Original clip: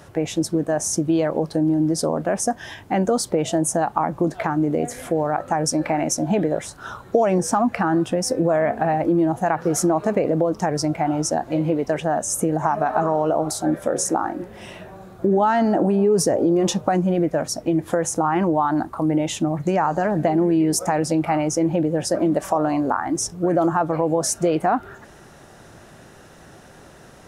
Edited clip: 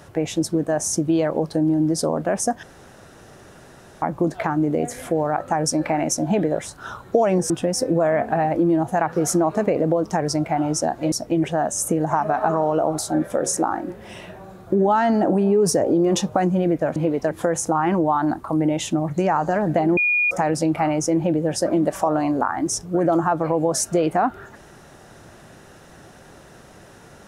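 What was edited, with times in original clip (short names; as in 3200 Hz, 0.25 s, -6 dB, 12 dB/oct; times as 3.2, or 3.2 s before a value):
2.63–4.02 room tone
7.5–7.99 cut
11.61–11.96 swap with 17.48–17.8
20.46–20.8 bleep 2440 Hz -16 dBFS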